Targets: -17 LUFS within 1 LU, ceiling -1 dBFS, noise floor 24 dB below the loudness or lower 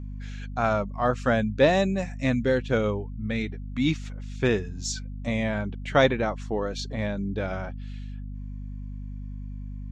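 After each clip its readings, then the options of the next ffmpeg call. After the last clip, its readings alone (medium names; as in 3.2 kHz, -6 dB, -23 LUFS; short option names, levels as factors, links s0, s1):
hum 50 Hz; highest harmonic 250 Hz; hum level -33 dBFS; loudness -26.5 LUFS; peak level -7.0 dBFS; loudness target -17.0 LUFS
-> -af "bandreject=f=50:t=h:w=6,bandreject=f=100:t=h:w=6,bandreject=f=150:t=h:w=6,bandreject=f=200:t=h:w=6,bandreject=f=250:t=h:w=6"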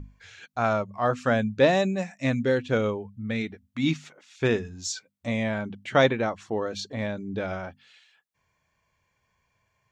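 hum not found; loudness -27.0 LUFS; peak level -7.0 dBFS; loudness target -17.0 LUFS
-> -af "volume=3.16,alimiter=limit=0.891:level=0:latency=1"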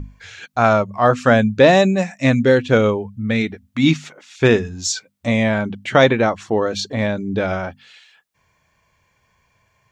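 loudness -17.5 LUFS; peak level -1.0 dBFS; noise floor -65 dBFS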